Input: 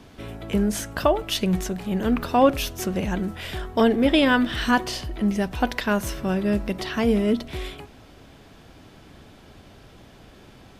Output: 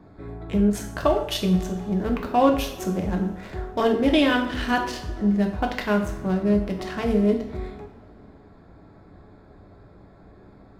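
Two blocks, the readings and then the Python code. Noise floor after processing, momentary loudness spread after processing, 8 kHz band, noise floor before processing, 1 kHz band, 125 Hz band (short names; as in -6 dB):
-50 dBFS, 11 LU, -5.5 dB, -49 dBFS, -0.5 dB, +1.5 dB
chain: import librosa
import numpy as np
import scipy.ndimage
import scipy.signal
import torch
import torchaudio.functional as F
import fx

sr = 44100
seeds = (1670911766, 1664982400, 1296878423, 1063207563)

y = fx.wiener(x, sr, points=15)
y = fx.rev_double_slope(y, sr, seeds[0], early_s=0.53, late_s=2.7, knee_db=-20, drr_db=2.0)
y = y * 10.0 ** (-2.5 / 20.0)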